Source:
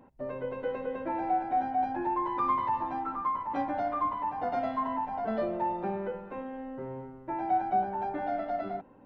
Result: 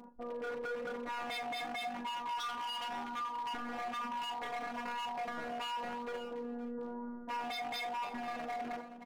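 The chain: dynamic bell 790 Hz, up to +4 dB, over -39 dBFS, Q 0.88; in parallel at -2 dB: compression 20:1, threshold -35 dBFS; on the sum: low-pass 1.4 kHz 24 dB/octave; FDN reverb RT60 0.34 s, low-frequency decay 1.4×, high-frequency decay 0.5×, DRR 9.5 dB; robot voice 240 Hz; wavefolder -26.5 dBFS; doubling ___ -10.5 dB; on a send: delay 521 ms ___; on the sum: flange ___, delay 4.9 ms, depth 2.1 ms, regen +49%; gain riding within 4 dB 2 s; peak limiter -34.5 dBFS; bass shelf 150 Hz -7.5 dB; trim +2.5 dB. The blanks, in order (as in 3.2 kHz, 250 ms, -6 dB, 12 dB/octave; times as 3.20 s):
41 ms, -18.5 dB, 0.99 Hz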